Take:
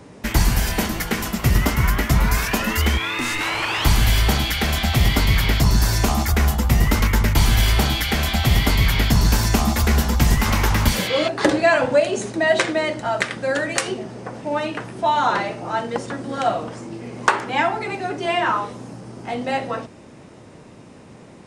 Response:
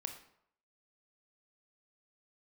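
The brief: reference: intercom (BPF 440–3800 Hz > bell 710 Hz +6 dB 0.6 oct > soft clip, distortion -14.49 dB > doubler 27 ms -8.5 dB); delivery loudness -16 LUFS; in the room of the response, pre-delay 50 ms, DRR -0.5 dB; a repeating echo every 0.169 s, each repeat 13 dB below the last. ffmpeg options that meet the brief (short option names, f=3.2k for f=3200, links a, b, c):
-filter_complex "[0:a]aecho=1:1:169|338|507:0.224|0.0493|0.0108,asplit=2[a][b];[1:a]atrim=start_sample=2205,adelay=50[c];[b][c]afir=irnorm=-1:irlink=0,volume=2dB[d];[a][d]amix=inputs=2:normalize=0,highpass=440,lowpass=3.8k,equalizer=f=710:t=o:w=0.6:g=6,asoftclip=threshold=-9dB,asplit=2[e][f];[f]adelay=27,volume=-8.5dB[g];[e][g]amix=inputs=2:normalize=0,volume=3.5dB"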